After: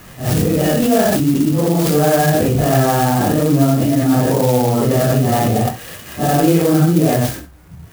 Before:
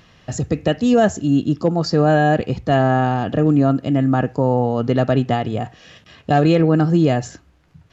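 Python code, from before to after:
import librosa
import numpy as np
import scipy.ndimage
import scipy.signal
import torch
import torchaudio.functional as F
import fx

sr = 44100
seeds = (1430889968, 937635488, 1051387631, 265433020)

p1 = fx.phase_scramble(x, sr, seeds[0], window_ms=200)
p2 = fx.over_compress(p1, sr, threshold_db=-26.0, ratio=-1.0)
p3 = p1 + (p2 * librosa.db_to_amplitude(2.0))
y = fx.clock_jitter(p3, sr, seeds[1], jitter_ms=0.066)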